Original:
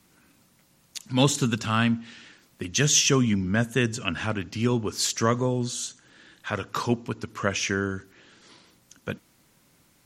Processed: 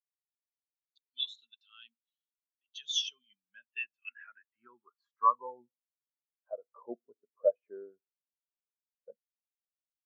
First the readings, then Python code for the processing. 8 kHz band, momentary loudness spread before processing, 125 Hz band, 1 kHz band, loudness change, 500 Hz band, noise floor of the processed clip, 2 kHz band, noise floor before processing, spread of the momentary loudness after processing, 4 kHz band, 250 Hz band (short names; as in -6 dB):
-22.0 dB, 17 LU, under -40 dB, -3.5 dB, -9.5 dB, -9.0 dB, under -85 dBFS, -17.5 dB, -63 dBFS, 20 LU, -9.0 dB, -31.5 dB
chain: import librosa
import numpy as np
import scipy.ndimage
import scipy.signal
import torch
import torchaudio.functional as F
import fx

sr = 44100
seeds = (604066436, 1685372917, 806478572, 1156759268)

y = fx.filter_sweep_bandpass(x, sr, from_hz=3800.0, to_hz=620.0, start_s=3.19, end_s=5.97, q=2.8)
y = fx.spectral_expand(y, sr, expansion=2.5)